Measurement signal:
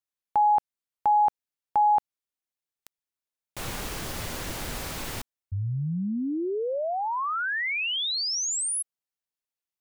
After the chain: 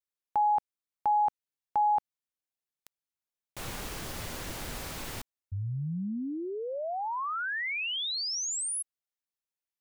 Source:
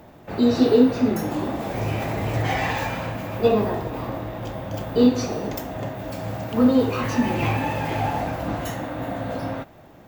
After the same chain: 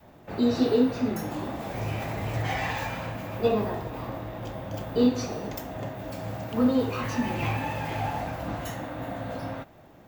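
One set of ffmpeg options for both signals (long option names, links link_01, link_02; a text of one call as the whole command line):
ffmpeg -i in.wav -af "adynamicequalizer=threshold=0.0251:dfrequency=350:dqfactor=0.89:tfrequency=350:tqfactor=0.89:attack=5:release=100:ratio=0.375:range=2:mode=cutabove:tftype=bell,volume=-4.5dB" out.wav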